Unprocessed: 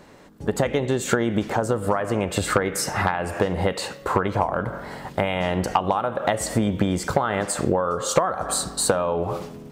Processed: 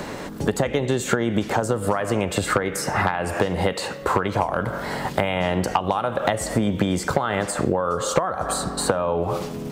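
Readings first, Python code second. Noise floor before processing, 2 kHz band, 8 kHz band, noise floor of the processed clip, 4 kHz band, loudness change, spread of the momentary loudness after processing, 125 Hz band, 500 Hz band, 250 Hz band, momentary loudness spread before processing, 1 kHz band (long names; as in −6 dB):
−42 dBFS, +1.5 dB, −2.0 dB, −33 dBFS, +0.5 dB, +0.5 dB, 4 LU, +1.0 dB, +0.5 dB, +1.0 dB, 5 LU, +0.5 dB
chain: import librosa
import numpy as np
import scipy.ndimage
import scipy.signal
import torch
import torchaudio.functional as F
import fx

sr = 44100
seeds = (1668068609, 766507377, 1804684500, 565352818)

y = fx.band_squash(x, sr, depth_pct=70)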